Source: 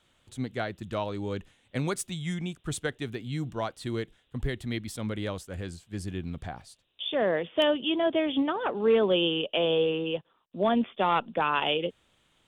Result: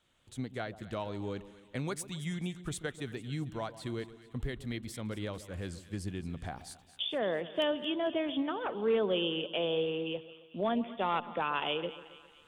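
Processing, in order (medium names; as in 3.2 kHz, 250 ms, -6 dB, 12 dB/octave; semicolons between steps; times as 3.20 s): recorder AGC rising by 11 dB/s; 6.50–7.05 s: treble shelf 5.6 kHz +7.5 dB; two-band feedback delay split 1.1 kHz, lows 135 ms, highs 223 ms, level -15 dB; trim -6.5 dB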